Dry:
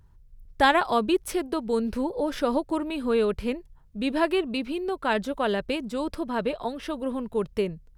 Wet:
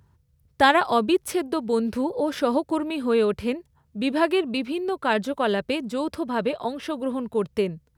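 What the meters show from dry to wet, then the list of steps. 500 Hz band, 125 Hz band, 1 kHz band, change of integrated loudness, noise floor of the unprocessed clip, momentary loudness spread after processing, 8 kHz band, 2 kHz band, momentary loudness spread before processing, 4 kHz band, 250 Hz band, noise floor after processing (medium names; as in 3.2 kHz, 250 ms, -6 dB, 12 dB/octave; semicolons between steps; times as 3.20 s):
+2.5 dB, +2.0 dB, +2.5 dB, +2.5 dB, -55 dBFS, 8 LU, +2.5 dB, +2.5 dB, 8 LU, +2.5 dB, +2.5 dB, -64 dBFS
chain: high-pass 73 Hz 24 dB/octave; trim +2.5 dB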